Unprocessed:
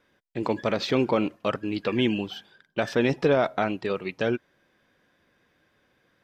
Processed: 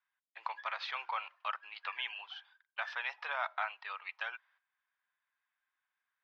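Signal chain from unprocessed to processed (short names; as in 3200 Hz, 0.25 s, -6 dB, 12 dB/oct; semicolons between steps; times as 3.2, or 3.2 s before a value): gate -53 dBFS, range -13 dB; steep high-pass 890 Hz 36 dB/oct; air absorption 290 m; gain -2.5 dB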